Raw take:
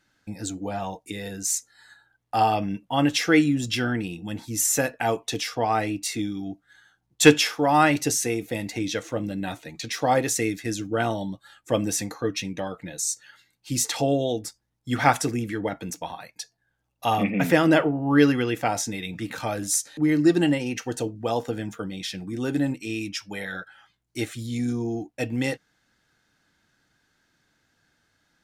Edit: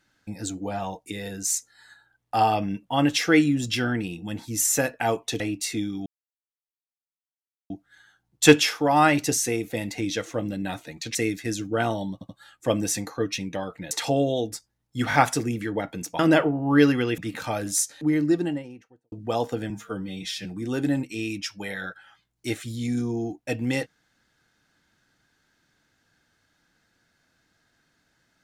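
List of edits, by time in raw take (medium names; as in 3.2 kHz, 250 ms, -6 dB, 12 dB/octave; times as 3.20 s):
5.40–5.82 s: delete
6.48 s: insert silence 1.64 s
9.93–10.35 s: delete
11.33 s: stutter 0.08 s, 3 plays
12.95–13.83 s: delete
15.01 s: stutter 0.02 s, 3 plays
16.07–17.59 s: delete
18.58–19.14 s: delete
19.79–21.08 s: studio fade out
21.66–22.16 s: stretch 1.5×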